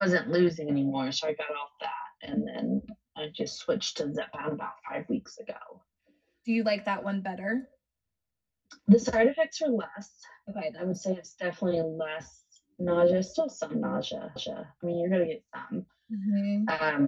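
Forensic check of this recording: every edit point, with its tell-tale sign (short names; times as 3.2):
14.36 repeat of the last 0.35 s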